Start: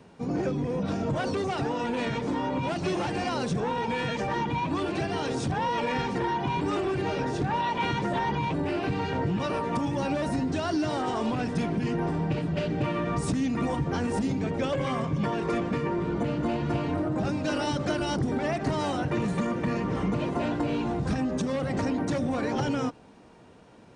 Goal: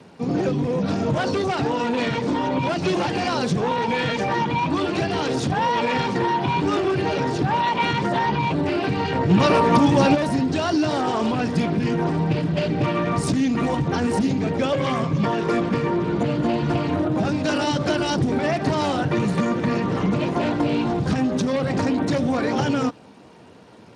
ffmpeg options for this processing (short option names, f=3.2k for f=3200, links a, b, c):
-filter_complex "[0:a]highshelf=f=5.4k:g=10.5,asplit=3[a][b][c];[a]afade=t=out:st=9.29:d=0.02[d];[b]acontrast=54,afade=t=in:st=9.29:d=0.02,afade=t=out:st=10.14:d=0.02[e];[c]afade=t=in:st=10.14:d=0.02[f];[d][e][f]amix=inputs=3:normalize=0,volume=6dB" -ar 32000 -c:a libspeex -b:a 24k